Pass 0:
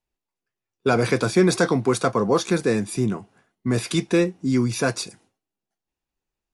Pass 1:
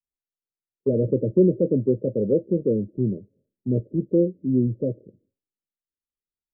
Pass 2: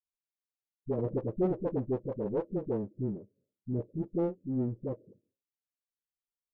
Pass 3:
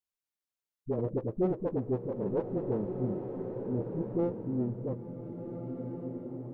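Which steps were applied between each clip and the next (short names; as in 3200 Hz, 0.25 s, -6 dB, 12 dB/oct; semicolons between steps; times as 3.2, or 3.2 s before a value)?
Chebyshev low-pass 610 Hz, order 10; three-band expander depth 40%
one diode to ground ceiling -18 dBFS; dispersion highs, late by 50 ms, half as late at 320 Hz; gain -9 dB
bloom reverb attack 1.7 s, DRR 4.5 dB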